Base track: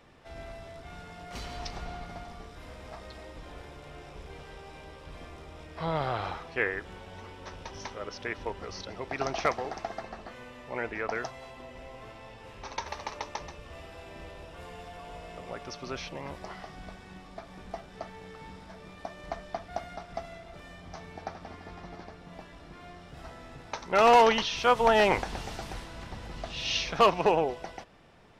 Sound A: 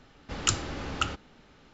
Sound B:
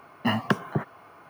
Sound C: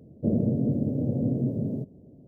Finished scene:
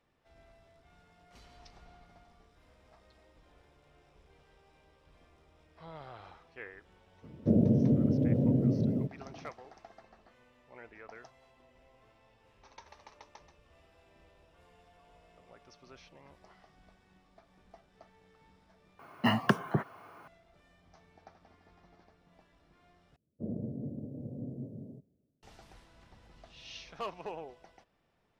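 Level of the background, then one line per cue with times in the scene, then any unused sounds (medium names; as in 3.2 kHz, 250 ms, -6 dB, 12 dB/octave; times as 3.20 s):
base track -17.5 dB
7.23 s: add C -0.5 dB
18.99 s: replace with B -2.5 dB
23.16 s: replace with C -14.5 dB + three bands expanded up and down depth 70%
not used: A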